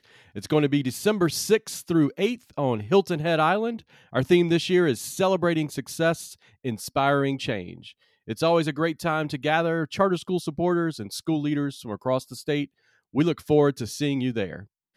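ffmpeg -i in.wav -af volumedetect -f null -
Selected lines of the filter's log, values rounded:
mean_volume: -24.8 dB
max_volume: -7.8 dB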